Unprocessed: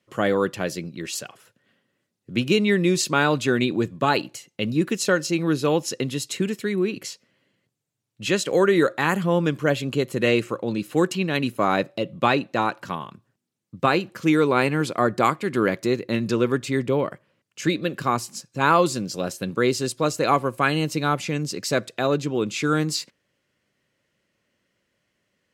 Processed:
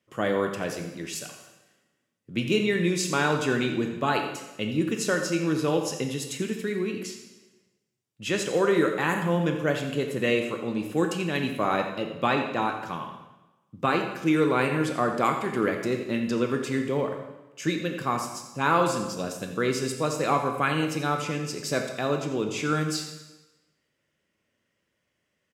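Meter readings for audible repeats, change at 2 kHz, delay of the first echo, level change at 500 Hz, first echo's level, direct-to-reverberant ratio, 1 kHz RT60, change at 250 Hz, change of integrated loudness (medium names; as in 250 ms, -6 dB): 1, -3.5 dB, 86 ms, -4.0 dB, -11.5 dB, 3.5 dB, 1.1 s, -3.5 dB, -3.5 dB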